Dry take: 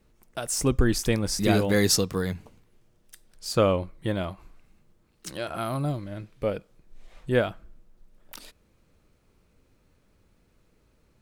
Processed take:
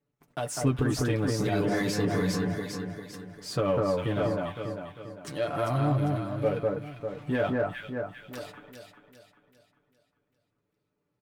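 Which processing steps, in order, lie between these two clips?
mu-law and A-law mismatch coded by mu
flanger 0.21 Hz, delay 7 ms, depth 5.2 ms, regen −35%
noise gate −52 dBFS, range −24 dB
high-pass filter 100 Hz 12 dB per octave
on a send: delay that swaps between a low-pass and a high-pass 199 ms, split 1,700 Hz, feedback 64%, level −2 dB
on the sum: brickwall limiter −19.5 dBFS, peak gain reduction 9.5 dB
comb filter 6.9 ms, depth 64%
in parallel at −5 dB: hard clipping −30.5 dBFS, distortion −7 dB
on the sum: high-shelf EQ 3,600 Hz −11.5 dB

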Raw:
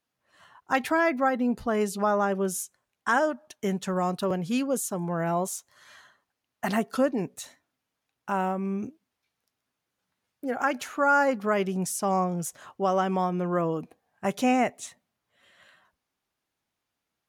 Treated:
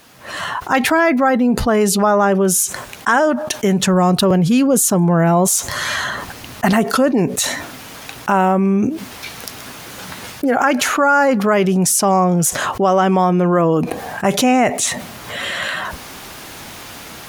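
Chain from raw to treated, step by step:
automatic gain control gain up to 13 dB
0:03.82–0:06.73: low-shelf EQ 190 Hz +8.5 dB
envelope flattener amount 70%
level −3.5 dB

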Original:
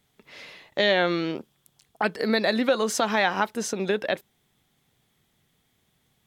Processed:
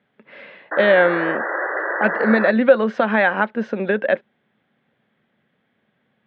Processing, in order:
sound drawn into the spectrogram noise, 0:00.71–0:02.51, 300–2,000 Hz −30 dBFS
loudspeaker in its box 160–2,800 Hz, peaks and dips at 220 Hz +8 dB, 550 Hz +9 dB, 1,600 Hz +8 dB
level +2 dB

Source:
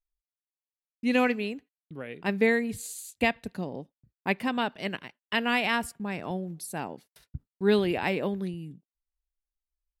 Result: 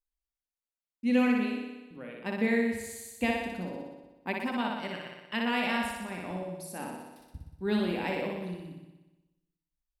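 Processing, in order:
flutter between parallel walls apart 10.4 metres, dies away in 1.1 s
on a send at −9.5 dB: convolution reverb RT60 0.45 s, pre-delay 3 ms
on the sum: level −7 dB

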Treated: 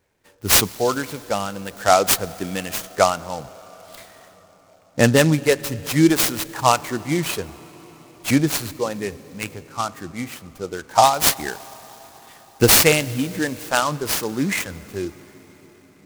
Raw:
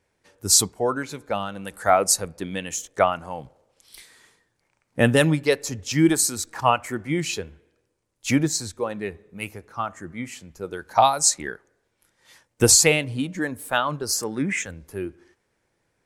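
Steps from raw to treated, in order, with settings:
on a send at −19 dB: convolution reverb RT60 6.0 s, pre-delay 98 ms
on the sum: short delay modulated by noise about 5,000 Hz, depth 0.04 ms
level +3 dB

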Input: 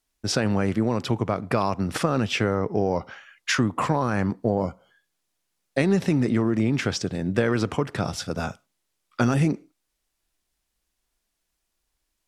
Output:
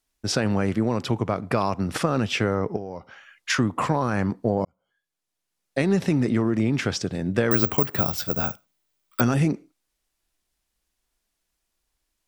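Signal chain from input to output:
0:02.76–0:03.50: downward compressor 2.5 to 1, threshold −36 dBFS, peak gain reduction 12 dB
0:04.65–0:05.97: fade in
0:07.51–0:09.21: bad sample-rate conversion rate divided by 2×, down filtered, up zero stuff

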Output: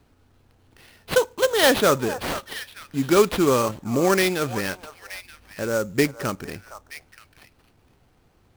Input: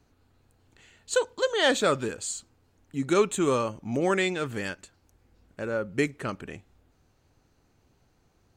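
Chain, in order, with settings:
echo through a band-pass that steps 463 ms, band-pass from 890 Hz, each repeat 1.4 octaves, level −9 dB
sample-rate reduction 7,200 Hz, jitter 20%
level +5.5 dB

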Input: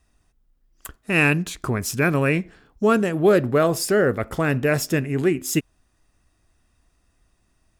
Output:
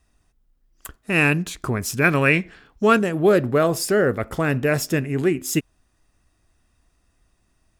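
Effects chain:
0:02.04–0:02.99: parametric band 2,500 Hz +7.5 dB 2.3 octaves

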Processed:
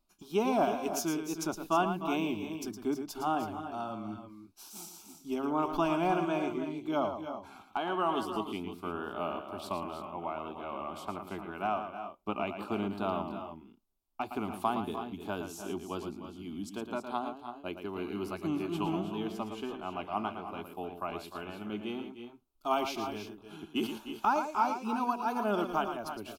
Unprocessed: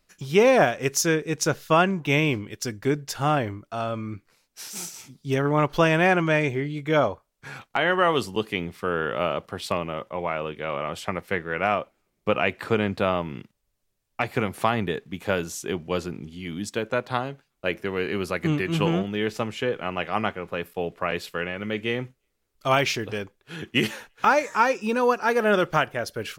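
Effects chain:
parametric band 6,600 Hz −7.5 dB 1.6 octaves
phaser with its sweep stopped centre 500 Hz, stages 6
tape wow and flutter 49 cents
on a send: multi-tap delay 113/302/327 ms −8.5/−12.5/−11.5 dB
on the sum: level −5.5 dB

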